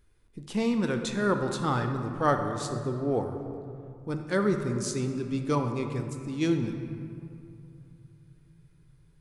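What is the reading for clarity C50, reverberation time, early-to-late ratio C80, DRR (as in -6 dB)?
6.5 dB, 2.7 s, 7.5 dB, 5.0 dB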